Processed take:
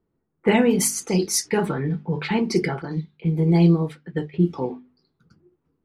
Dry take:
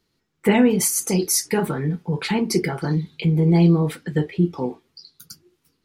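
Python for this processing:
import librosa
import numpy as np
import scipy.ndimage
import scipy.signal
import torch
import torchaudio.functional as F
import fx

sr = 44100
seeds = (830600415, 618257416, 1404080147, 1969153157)

y = fx.env_lowpass(x, sr, base_hz=870.0, full_db=-14.5)
y = fx.hum_notches(y, sr, base_hz=50, count=5)
y = fx.upward_expand(y, sr, threshold_db=-36.0, expansion=1.5, at=(2.82, 4.34))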